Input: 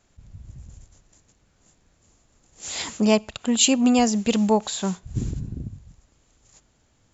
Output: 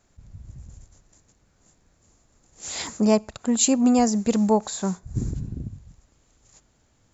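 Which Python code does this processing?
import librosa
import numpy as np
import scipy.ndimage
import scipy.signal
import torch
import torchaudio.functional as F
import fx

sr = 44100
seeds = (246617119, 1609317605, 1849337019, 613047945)

y = fx.peak_eq(x, sr, hz=3000.0, db=fx.steps((0.0, -4.5), (2.87, -13.5), (5.35, -2.5)), octaves=0.74)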